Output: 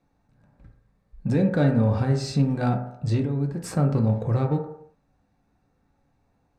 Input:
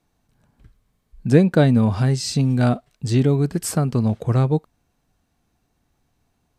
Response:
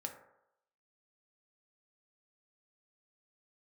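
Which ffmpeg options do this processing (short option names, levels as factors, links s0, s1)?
-filter_complex "[0:a]aemphasis=mode=reproduction:type=75kf,bandreject=f=3100:w=7.2,acrossover=split=2400[s0][s1];[s0]alimiter=limit=0.224:level=0:latency=1[s2];[s2][s1]amix=inputs=2:normalize=0,asettb=1/sr,asplit=3[s3][s4][s5];[s3]atrim=end=3.204[s6];[s4]atrim=start=3.2:end=3.64,asetpts=PTS-STARTPTS,afade=t=in:d=0.004:c=qsin,afade=t=out:st=0.436:d=0.004:c=qsin,acompressor=threshold=0.0501:ratio=5[s7];[s5]atrim=start=3.636[s8];[s6][s7]acrossfade=d=0.004:c1=hsin:c2=qsin[s9];[s9][s8]acrossfade=d=0.004:c1=qsin:c2=hsin,asplit=2[s10][s11];[s11]asoftclip=type=tanh:threshold=0.0376,volume=0.447[s12];[s10][s12]amix=inputs=2:normalize=0[s13];[1:a]atrim=start_sample=2205,afade=t=out:st=0.42:d=0.01,atrim=end_sample=18963[s14];[s13][s14]afir=irnorm=-1:irlink=0"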